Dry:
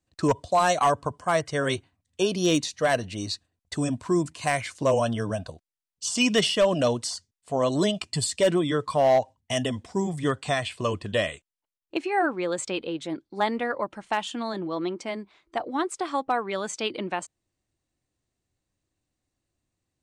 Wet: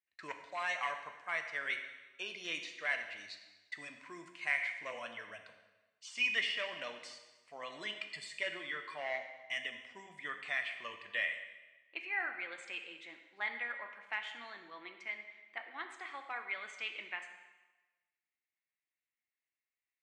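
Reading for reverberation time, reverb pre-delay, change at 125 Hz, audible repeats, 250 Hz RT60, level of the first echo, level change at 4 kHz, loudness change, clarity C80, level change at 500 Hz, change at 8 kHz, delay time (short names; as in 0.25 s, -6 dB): 1.2 s, 4 ms, under -35 dB, none, 1.2 s, none, -11.5 dB, -13.0 dB, 9.5 dB, -23.5 dB, -23.0 dB, none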